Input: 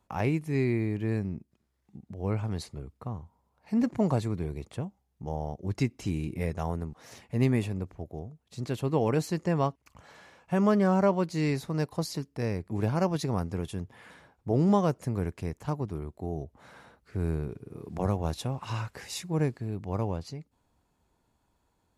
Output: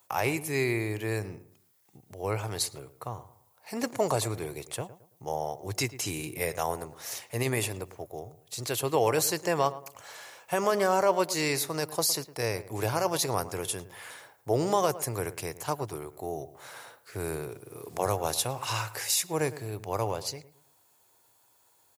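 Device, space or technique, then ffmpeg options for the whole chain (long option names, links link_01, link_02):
car stereo with a boomy subwoofer: -filter_complex "[0:a]highpass=250,aemphasis=mode=production:type=riaa,lowshelf=frequency=150:width_type=q:width=3:gain=12,alimiter=limit=-20.5dB:level=0:latency=1:release=13,equalizer=frequency=390:width=0.44:gain=4,asplit=2[link_01][link_02];[link_02]adelay=110,lowpass=frequency=1500:poles=1,volume=-14.5dB,asplit=2[link_03][link_04];[link_04]adelay=110,lowpass=frequency=1500:poles=1,volume=0.35,asplit=2[link_05][link_06];[link_06]adelay=110,lowpass=frequency=1500:poles=1,volume=0.35[link_07];[link_01][link_03][link_05][link_07]amix=inputs=4:normalize=0,volume=4dB"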